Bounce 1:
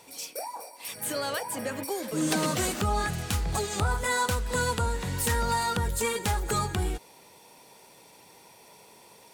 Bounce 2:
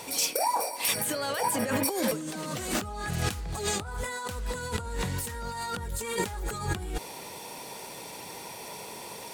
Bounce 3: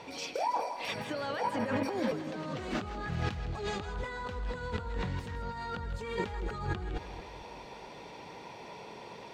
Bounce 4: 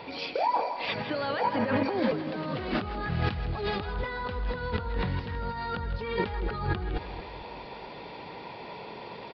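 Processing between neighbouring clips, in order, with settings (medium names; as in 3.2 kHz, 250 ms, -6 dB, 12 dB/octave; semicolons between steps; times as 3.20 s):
compressor with a negative ratio -37 dBFS, ratio -1; trim +5 dB
distance through air 210 m; two-band feedback delay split 620 Hz, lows 226 ms, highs 161 ms, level -11 dB; trim -3 dB
resampled via 11.025 kHz; trim +5 dB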